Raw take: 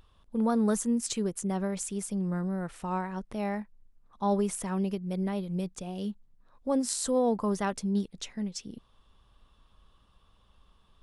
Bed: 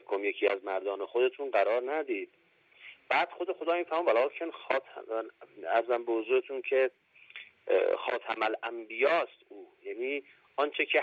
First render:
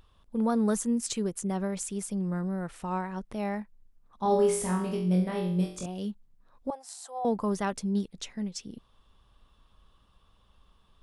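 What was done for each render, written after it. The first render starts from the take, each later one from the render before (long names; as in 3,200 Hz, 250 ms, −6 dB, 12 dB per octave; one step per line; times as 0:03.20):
0:04.23–0:05.86: flutter between parallel walls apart 3.8 metres, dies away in 0.53 s
0:06.70–0:07.25: four-pole ladder high-pass 710 Hz, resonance 75%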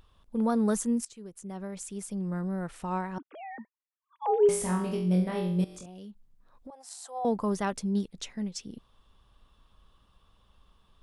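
0:01.05–0:02.59: fade in, from −21.5 dB
0:03.18–0:04.49: three sine waves on the formant tracks
0:05.64–0:06.91: downward compressor, threshold −42 dBFS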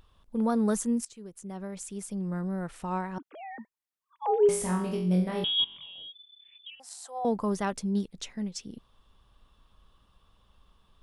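0:05.44–0:06.80: voice inversion scrambler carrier 3,500 Hz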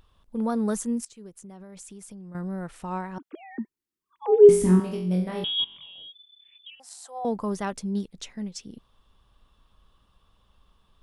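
0:01.44–0:02.35: downward compressor, threshold −40 dBFS
0:03.33–0:04.80: low shelf with overshoot 460 Hz +9.5 dB, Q 3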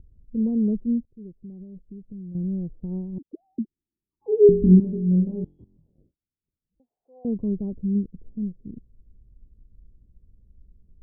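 inverse Chebyshev low-pass filter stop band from 1,800 Hz, stop band 70 dB
low-shelf EQ 190 Hz +11 dB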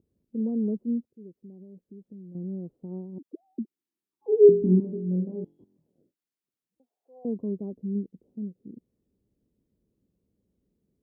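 high-pass filter 270 Hz 12 dB per octave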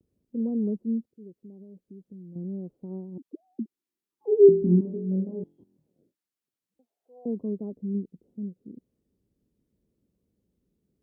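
pitch vibrato 0.82 Hz 62 cents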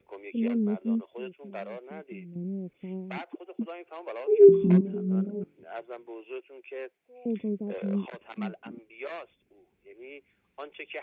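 mix in bed −12 dB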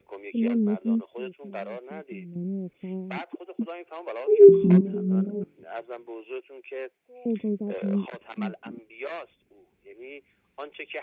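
level +3 dB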